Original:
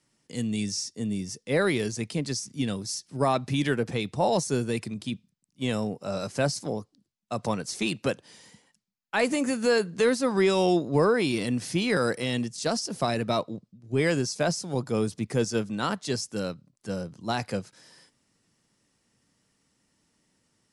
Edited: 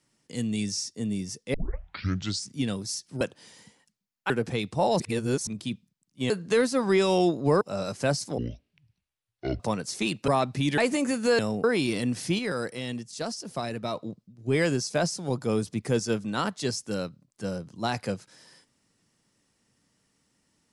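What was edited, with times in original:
1.54 s: tape start 0.95 s
3.21–3.71 s: swap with 8.08–9.17 s
4.41–4.88 s: reverse
5.71–5.96 s: swap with 9.78–11.09 s
6.73–7.40 s: speed 55%
11.84–13.41 s: gain -5.5 dB

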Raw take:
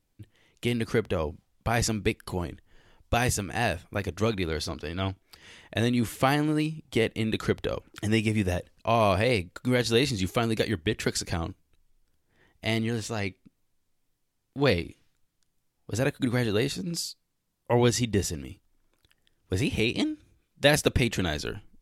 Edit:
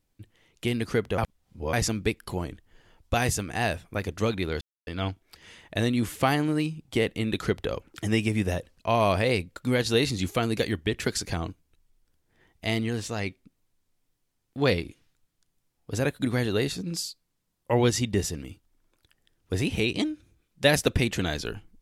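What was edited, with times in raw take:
1.18–1.73 s: reverse
4.61–4.87 s: mute

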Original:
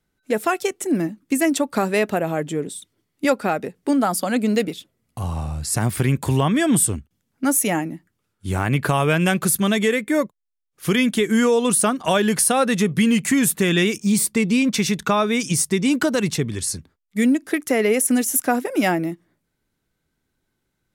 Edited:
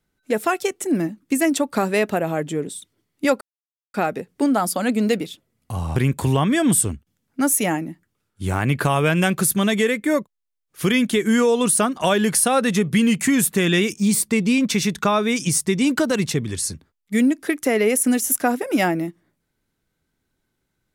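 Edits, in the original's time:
3.41 s: insert silence 0.53 s
5.43–6.00 s: delete

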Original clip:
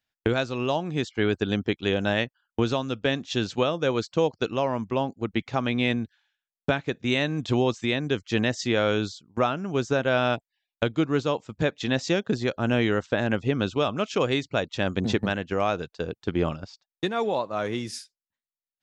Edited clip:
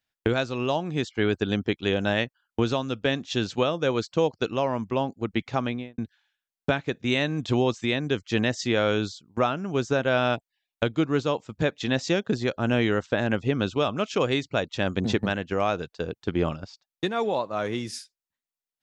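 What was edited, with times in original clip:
5.57–5.98 s: studio fade out

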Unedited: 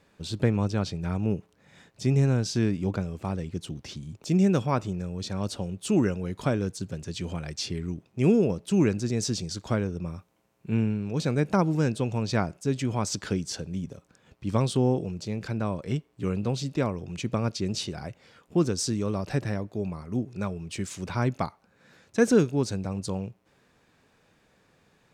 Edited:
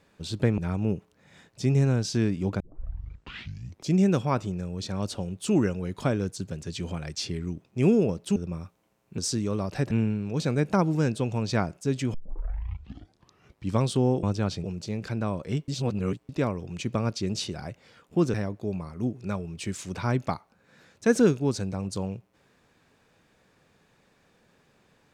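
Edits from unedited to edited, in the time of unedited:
0.58–0.99 s: move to 15.03 s
3.01 s: tape start 1.34 s
8.77–9.89 s: delete
12.94 s: tape start 1.59 s
16.07–16.68 s: reverse
18.73–19.46 s: move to 10.71 s

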